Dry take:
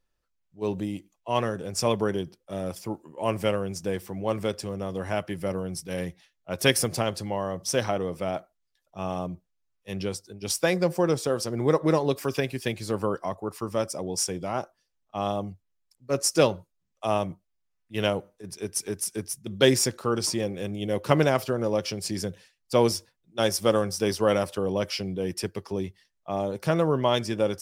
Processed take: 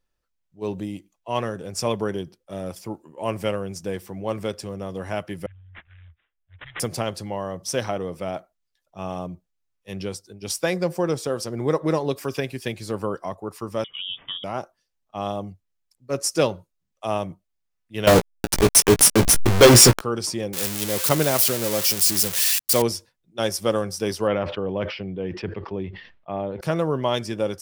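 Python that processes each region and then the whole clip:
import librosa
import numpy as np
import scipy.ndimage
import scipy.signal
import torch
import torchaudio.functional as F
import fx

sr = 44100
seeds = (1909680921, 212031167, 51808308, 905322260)

y = fx.chain(x, sr, fx.cheby2_bandstop(low_hz=200.0, high_hz=2500.0, order=4, stop_db=50),
    fx.high_shelf_res(hz=6300.0, db=-8.5, q=1.5),
    fx.resample_bad(factor=6, down='none', up='filtered'), at=(5.46, 6.8))
y = fx.chain(y, sr, fx.highpass(hz=42.0, slope=12),
    fx.freq_invert(carrier_hz=3500), at=(13.84, 14.44))
y = fx.chain(y, sr, fx.delta_hold(step_db=-31.0),
    fx.leveller(passes=5),
    fx.doubler(ms=17.0, db=-8.5), at=(18.07, 20.01))
y = fx.chain(y, sr, fx.crossing_spikes(level_db=-12.0),
    fx.highpass(hz=50.0, slope=12), at=(20.53, 22.82))
y = fx.chain(y, sr, fx.lowpass(hz=3100.0, slope=24),
    fx.sustainer(db_per_s=78.0), at=(24.27, 26.61))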